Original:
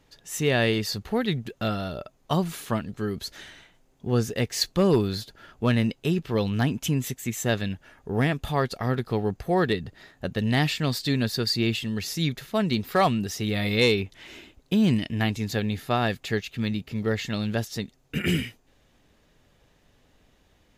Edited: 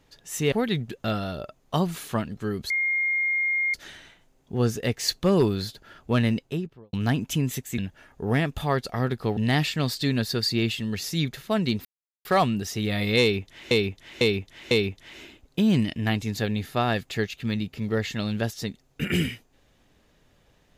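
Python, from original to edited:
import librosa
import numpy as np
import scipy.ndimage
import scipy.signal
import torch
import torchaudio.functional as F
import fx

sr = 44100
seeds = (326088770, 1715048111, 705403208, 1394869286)

y = fx.studio_fade_out(x, sr, start_s=5.83, length_s=0.63)
y = fx.edit(y, sr, fx.cut(start_s=0.52, length_s=0.57),
    fx.insert_tone(at_s=3.27, length_s=1.04, hz=2130.0, db=-21.5),
    fx.cut(start_s=7.31, length_s=0.34),
    fx.cut(start_s=9.24, length_s=1.17),
    fx.insert_silence(at_s=12.89, length_s=0.4),
    fx.repeat(start_s=13.85, length_s=0.5, count=4), tone=tone)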